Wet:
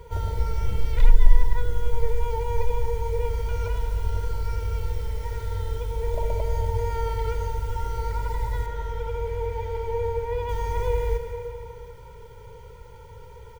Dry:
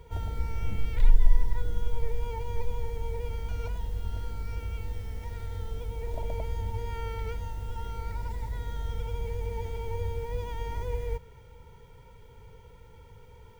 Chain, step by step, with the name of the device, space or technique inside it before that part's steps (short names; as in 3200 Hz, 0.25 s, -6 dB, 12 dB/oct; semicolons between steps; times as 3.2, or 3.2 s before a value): low shelf 140 Hz -4.5 dB; compressed reverb return (on a send at -4.5 dB: reverb RT60 2.7 s, pre-delay 55 ms + compressor, threshold -31 dBFS, peak gain reduction 15 dB); on the sum: comb 2 ms, depth 63%; 8.66–10.49 tone controls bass -5 dB, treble -9 dB; gain +5 dB